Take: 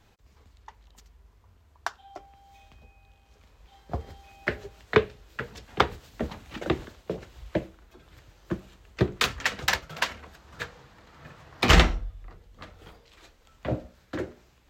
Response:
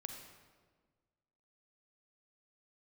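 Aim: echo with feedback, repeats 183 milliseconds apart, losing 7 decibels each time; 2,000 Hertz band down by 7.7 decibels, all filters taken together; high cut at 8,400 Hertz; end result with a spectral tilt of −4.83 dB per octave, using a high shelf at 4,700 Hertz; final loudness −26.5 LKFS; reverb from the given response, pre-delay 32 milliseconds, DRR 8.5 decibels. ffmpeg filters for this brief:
-filter_complex "[0:a]lowpass=8400,equalizer=frequency=2000:width_type=o:gain=-8.5,highshelf=frequency=4700:gain=-8,aecho=1:1:183|366|549|732|915:0.447|0.201|0.0905|0.0407|0.0183,asplit=2[link_01][link_02];[1:a]atrim=start_sample=2205,adelay=32[link_03];[link_02][link_03]afir=irnorm=-1:irlink=0,volume=-5.5dB[link_04];[link_01][link_04]amix=inputs=2:normalize=0,volume=3.5dB"

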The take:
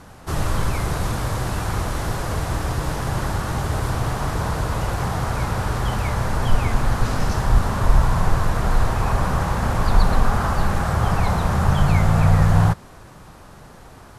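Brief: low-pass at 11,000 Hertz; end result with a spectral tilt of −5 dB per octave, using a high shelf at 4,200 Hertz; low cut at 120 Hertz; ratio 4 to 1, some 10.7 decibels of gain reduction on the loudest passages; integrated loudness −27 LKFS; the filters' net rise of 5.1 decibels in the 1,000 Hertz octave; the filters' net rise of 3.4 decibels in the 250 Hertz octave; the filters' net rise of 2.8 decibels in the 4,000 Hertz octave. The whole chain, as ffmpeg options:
ffmpeg -i in.wav -af "highpass=120,lowpass=11000,equalizer=frequency=250:width_type=o:gain=6,equalizer=frequency=1000:width_type=o:gain=6,equalizer=frequency=4000:width_type=o:gain=6,highshelf=frequency=4200:gain=-5,acompressor=threshold=-26dB:ratio=4,volume=1.5dB" out.wav

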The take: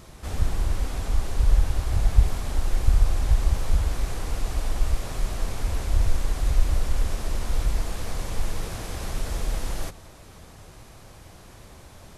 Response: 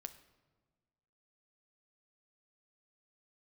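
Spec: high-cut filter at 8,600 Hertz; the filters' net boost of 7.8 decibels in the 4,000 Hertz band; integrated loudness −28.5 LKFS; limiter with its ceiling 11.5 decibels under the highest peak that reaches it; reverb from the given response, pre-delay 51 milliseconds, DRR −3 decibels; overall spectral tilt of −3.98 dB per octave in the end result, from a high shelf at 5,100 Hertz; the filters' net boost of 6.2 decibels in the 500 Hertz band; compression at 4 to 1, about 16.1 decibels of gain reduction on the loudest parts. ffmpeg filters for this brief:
-filter_complex "[0:a]lowpass=8600,equalizer=frequency=500:width_type=o:gain=7.5,equalizer=frequency=4000:width_type=o:gain=8,highshelf=frequency=5100:gain=4,acompressor=threshold=-30dB:ratio=4,alimiter=level_in=6.5dB:limit=-24dB:level=0:latency=1,volume=-6.5dB,asplit=2[link_01][link_02];[1:a]atrim=start_sample=2205,adelay=51[link_03];[link_02][link_03]afir=irnorm=-1:irlink=0,volume=7.5dB[link_04];[link_01][link_04]amix=inputs=2:normalize=0,volume=9.5dB"

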